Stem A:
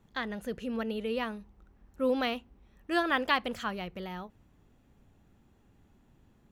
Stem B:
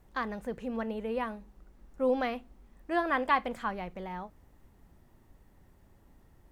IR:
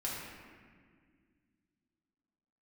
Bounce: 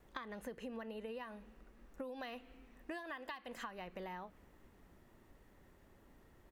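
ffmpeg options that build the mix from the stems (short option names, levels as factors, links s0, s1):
-filter_complex "[0:a]highpass=160,highshelf=f=3600:g=11,volume=0.178,asplit=2[s0][s1];[s1]volume=0.158[s2];[1:a]bass=f=250:g=-9,treble=f=4000:g=-6,acompressor=threshold=0.0251:ratio=6,adelay=1.1,volume=1.33[s3];[2:a]atrim=start_sample=2205[s4];[s2][s4]afir=irnorm=-1:irlink=0[s5];[s0][s3][s5]amix=inputs=3:normalize=0,equalizer=f=820:t=o:w=0.63:g=-5,acompressor=threshold=0.00794:ratio=16"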